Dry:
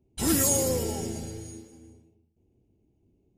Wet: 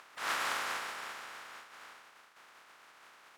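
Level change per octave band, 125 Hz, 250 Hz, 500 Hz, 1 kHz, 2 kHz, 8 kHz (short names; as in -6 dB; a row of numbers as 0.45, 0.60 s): -33.0, -28.5, -19.0, +2.5, +6.5, -19.5 dB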